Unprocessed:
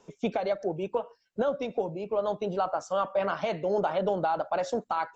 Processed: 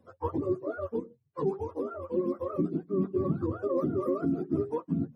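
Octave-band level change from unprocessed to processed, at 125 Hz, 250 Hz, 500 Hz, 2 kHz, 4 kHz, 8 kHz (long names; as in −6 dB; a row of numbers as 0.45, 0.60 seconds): +6.5 dB, +6.0 dB, −3.0 dB, below −10 dB, below −20 dB, can't be measured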